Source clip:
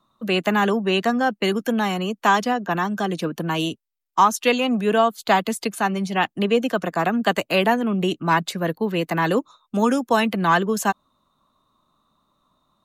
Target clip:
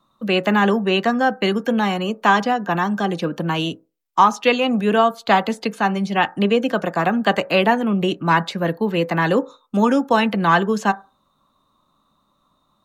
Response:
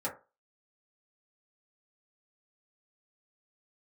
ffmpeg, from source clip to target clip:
-filter_complex "[0:a]acrossover=split=5600[a][b];[b]acompressor=threshold=-52dB:ratio=4:attack=1:release=60[c];[a][c]amix=inputs=2:normalize=0,asplit=2[d][e];[1:a]atrim=start_sample=2205[f];[e][f]afir=irnorm=-1:irlink=0,volume=-16dB[g];[d][g]amix=inputs=2:normalize=0,volume=1.5dB"

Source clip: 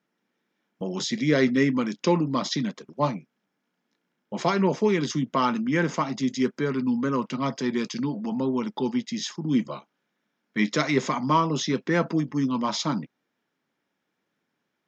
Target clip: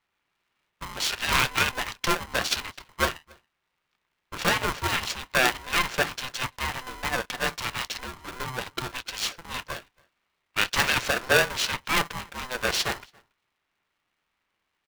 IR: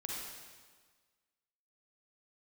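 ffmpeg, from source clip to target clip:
-filter_complex "[0:a]aeval=exprs='if(lt(val(0),0),0.251*val(0),val(0))':c=same,highpass=f=490:w=0.5412,highpass=f=490:w=1.3066,equalizer=f=2.6k:t=o:w=2.4:g=10,adynamicsmooth=sensitivity=7.5:basefreq=3.7k,asplit=2[a][b];[b]adelay=279.9,volume=-28dB,highshelf=f=4k:g=-6.3[c];[a][c]amix=inputs=2:normalize=0,aeval=exprs='val(0)*sgn(sin(2*PI*510*n/s))':c=same,volume=1dB"

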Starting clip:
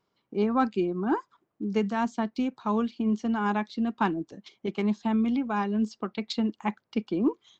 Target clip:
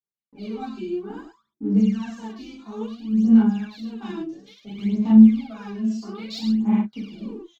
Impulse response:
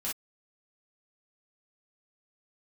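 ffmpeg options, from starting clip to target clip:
-filter_complex "[0:a]asettb=1/sr,asplit=3[a][b][c];[a]atrim=end=5.684[d];[b]atrim=start=5.68:end=6.51,asetpts=PTS-STARTPTS,afade=t=in:d=0.004:c=qsin,afade=t=out:st=0.826:d=0.004:c=qsin,asplit=2[e][f];[f]adelay=31,volume=-4dB[g];[e][g]amix=inputs=2:normalize=0,atrim=end_sample=36603[h];[c]atrim=start=6.506[i];[d][h]acrossfade=d=0.004:c1=hsin:c2=qsin[j];[j][i]acrossfade=d=0.004:c1=qsin:c2=hsin,acrossover=split=260|2900[k][l][m];[l]acompressor=threshold=-41dB:ratio=6[n];[k][n][m]amix=inputs=3:normalize=0,agate=range=-33dB:threshold=-54dB:ratio=3:detection=peak,flanger=delay=4.9:depth=2:regen=-43:speed=1.5:shape=sinusoidal,asplit=2[o][p];[p]aeval=exprs='sgn(val(0))*max(abs(val(0))-0.00316,0)':c=same,volume=-11dB[q];[o][q]amix=inputs=2:normalize=0,aecho=1:1:40.82|105:0.631|0.562[r];[1:a]atrim=start_sample=2205[s];[r][s]afir=irnorm=-1:irlink=0,aphaser=in_gain=1:out_gain=1:delay=3:decay=0.76:speed=0.59:type=sinusoidal,volume=-4.5dB"

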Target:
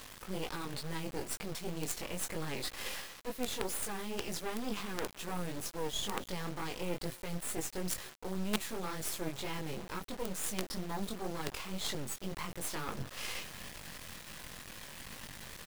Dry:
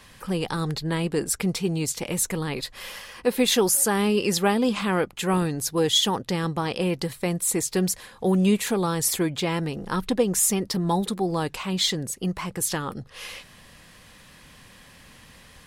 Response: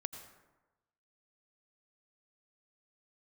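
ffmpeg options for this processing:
-filter_complex "[0:a]areverse,acompressor=threshold=-37dB:ratio=6,areverse,asplit=2[a][b];[b]adelay=280,highpass=300,lowpass=3.4k,asoftclip=type=hard:threshold=-31dB,volume=-18dB[c];[a][c]amix=inputs=2:normalize=0,flanger=delay=18.5:depth=4.4:speed=2.1,acrusher=bits=6:dc=4:mix=0:aa=0.000001,volume=7.5dB"

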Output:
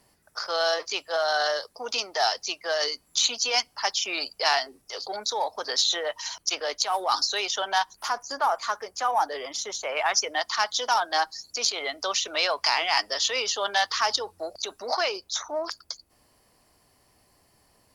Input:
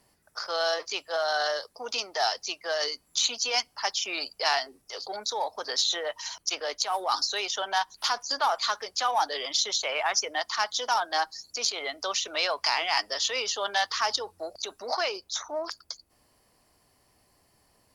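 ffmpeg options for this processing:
-filter_complex "[0:a]asettb=1/sr,asplit=3[a][b][c];[a]atrim=end=7.934[d];[b]atrim=start=7.93:end=9.97,asetpts=PTS-STARTPTS,afade=t=in:d=0.004:c=qsin,afade=t=out:st=2.036:d=0.004:c=qsin,equalizer=f=3.8k:w=1.1:g=-13[e];[c]atrim=start=9.966[f];[d][e]acrossfade=d=0.004:c1=hsin:c2=qsin[g];[g][f]acrossfade=d=0.004:c1=qsin:c2=hsin,volume=2.5dB"

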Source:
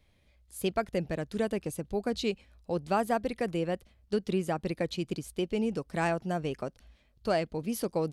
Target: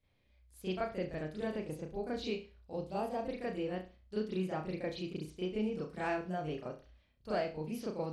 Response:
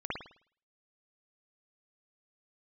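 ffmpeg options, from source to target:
-filter_complex "[0:a]asettb=1/sr,asplit=3[a][b][c];[a]atrim=end=2.724[d];[b]atrim=start=2.72:end=3.19,asetpts=PTS-STARTPTS,afade=t=in:d=0.004:c=qsin,afade=t=out:st=0.466:d=0.004:c=qsin,equalizer=f=1.5k:w=1.3:g=-12[e];[c]atrim=start=3.186[f];[d][e]acrossfade=d=0.004:c1=hsin:c2=qsin[g];[g][f]acrossfade=d=0.004:c1=qsin:c2=hsin[h];[1:a]atrim=start_sample=2205,asetrate=70560,aresample=44100[i];[h][i]afir=irnorm=-1:irlink=0,volume=-7dB"

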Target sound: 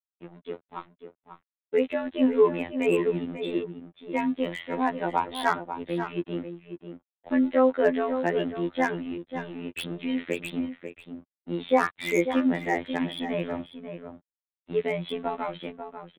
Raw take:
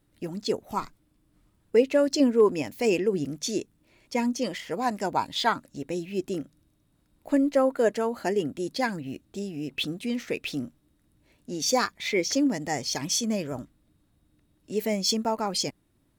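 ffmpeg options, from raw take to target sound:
-filter_complex "[0:a]equalizer=f=1.9k:w=2.9:g=3.5,dynaudnorm=f=490:g=7:m=15dB,aresample=8000,aeval=exprs='sgn(val(0))*max(abs(val(0))-0.0126,0)':c=same,aresample=44100,afftfilt=real='hypot(re,im)*cos(PI*b)':imag='0':win_size=2048:overlap=0.75,acrossover=split=180|1900[a][b][c];[c]aeval=exprs='0.0668*(abs(mod(val(0)/0.0668+3,4)-2)-1)':c=same[d];[a][b][d]amix=inputs=3:normalize=0,asplit=2[e][f];[f]adelay=542.3,volume=-9dB,highshelf=f=4k:g=-12.2[g];[e][g]amix=inputs=2:normalize=0,volume=-5dB"

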